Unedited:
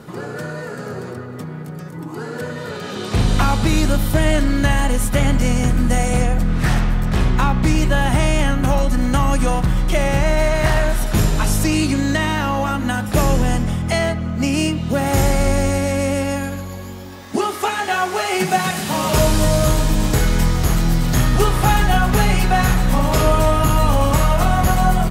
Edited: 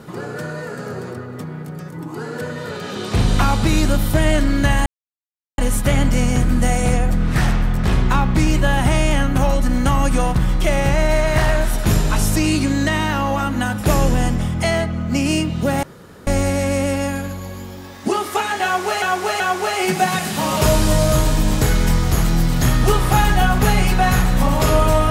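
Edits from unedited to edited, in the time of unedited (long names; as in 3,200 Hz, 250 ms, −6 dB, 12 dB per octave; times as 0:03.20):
0:04.86: splice in silence 0.72 s
0:15.11–0:15.55: fill with room tone
0:17.92–0:18.30: repeat, 3 plays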